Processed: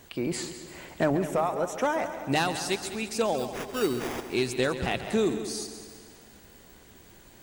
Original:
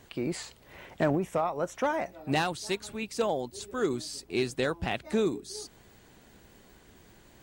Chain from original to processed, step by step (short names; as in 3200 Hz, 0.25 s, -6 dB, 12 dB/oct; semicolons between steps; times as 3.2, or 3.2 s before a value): high shelf 6400 Hz +6 dB; notches 50/100/150 Hz; in parallel at -11 dB: soft clip -22 dBFS, distortion -15 dB; 3.38–4.22 on the sum: sample-rate reducer 4200 Hz, jitter 0%; multi-head echo 68 ms, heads second and third, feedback 54%, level -13 dB